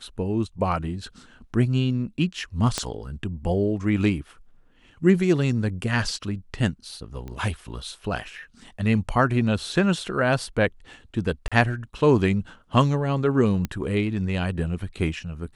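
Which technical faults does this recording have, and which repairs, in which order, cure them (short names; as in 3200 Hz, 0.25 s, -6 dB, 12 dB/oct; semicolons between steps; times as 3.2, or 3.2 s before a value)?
2.78 pop -10 dBFS
7.28 pop -24 dBFS
11.48–11.52 gap 36 ms
13.65 pop -14 dBFS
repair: de-click; interpolate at 11.48, 36 ms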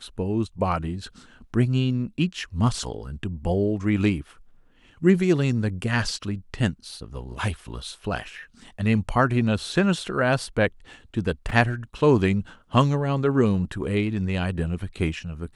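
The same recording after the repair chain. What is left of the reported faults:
2.78 pop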